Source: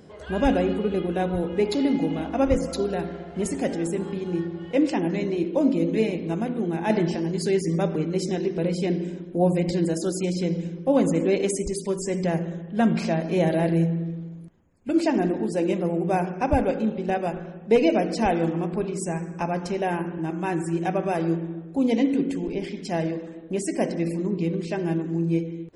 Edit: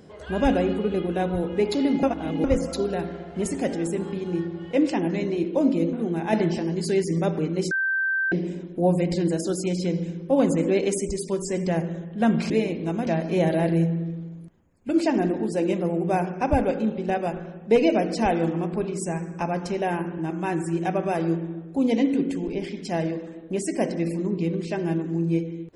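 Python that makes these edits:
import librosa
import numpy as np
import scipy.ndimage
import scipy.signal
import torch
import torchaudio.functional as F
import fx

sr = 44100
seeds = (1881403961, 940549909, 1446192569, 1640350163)

y = fx.edit(x, sr, fx.reverse_span(start_s=2.03, length_s=0.41),
    fx.move(start_s=5.93, length_s=0.57, to_s=13.07),
    fx.bleep(start_s=8.28, length_s=0.61, hz=1560.0, db=-21.0), tone=tone)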